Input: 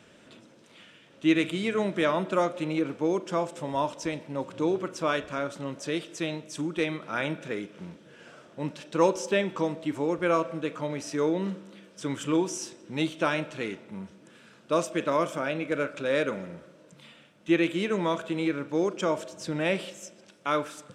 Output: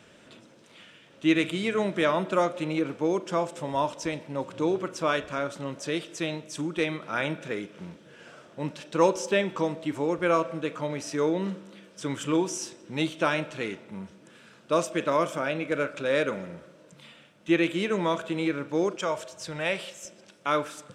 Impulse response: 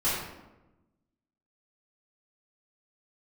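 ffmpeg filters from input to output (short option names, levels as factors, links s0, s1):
-af "asetnsamples=n=441:p=0,asendcmd='18.96 equalizer g -14.5;20.05 equalizer g -2',equalizer=f=260:w=1.2:g=-2,volume=1.19"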